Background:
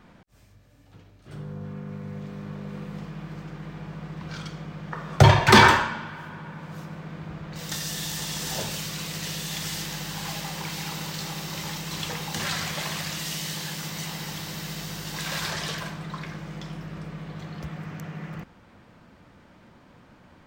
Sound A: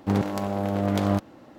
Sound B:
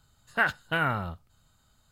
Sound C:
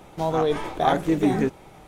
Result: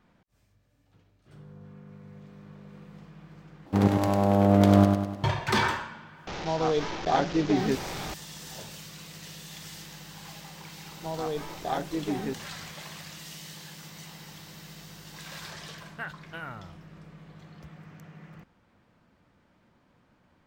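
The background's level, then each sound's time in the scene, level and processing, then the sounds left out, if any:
background -11.5 dB
3.66 replace with A -0.5 dB + feedback echo 0.1 s, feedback 50%, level -4 dB
6.27 add C -4 dB + delta modulation 32 kbps, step -26 dBFS
10.85 add C -10 dB
15.61 add B -13 dB

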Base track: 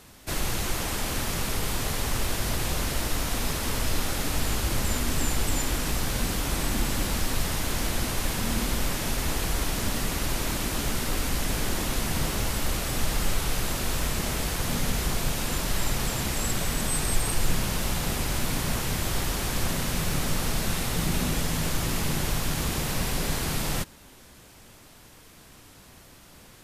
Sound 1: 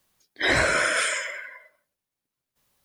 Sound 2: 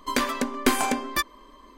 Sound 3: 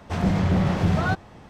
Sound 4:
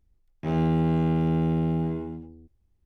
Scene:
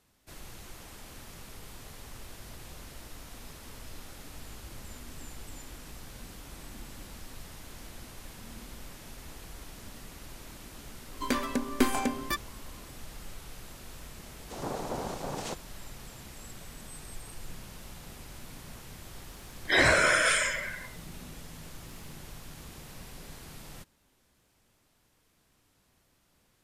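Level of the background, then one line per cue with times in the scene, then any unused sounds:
base track -18.5 dB
11.14 add 2 -7.5 dB + low shelf 320 Hz +8 dB
14.39 add 3 -14.5 dB + noise vocoder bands 2
19.29 add 1 -1 dB
not used: 4

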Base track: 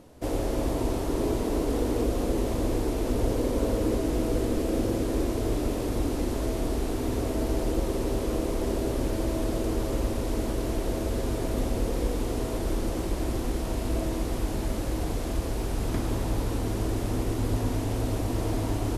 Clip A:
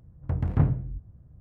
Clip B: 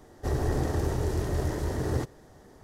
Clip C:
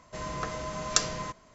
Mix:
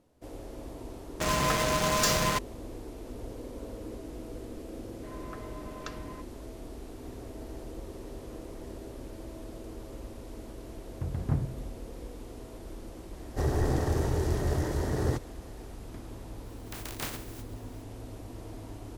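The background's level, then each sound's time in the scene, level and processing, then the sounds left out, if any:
base track -15 dB
1.07 add C -8 dB + fuzz box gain 42 dB, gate -37 dBFS
4.9 add C -10.5 dB + LPF 2600 Hz
6.81 add B -13 dB + compressor 4:1, threshold -38 dBFS
10.72 add A -7 dB
13.13 add B
16.43 add A -16 dB + spectral contrast lowered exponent 0.15

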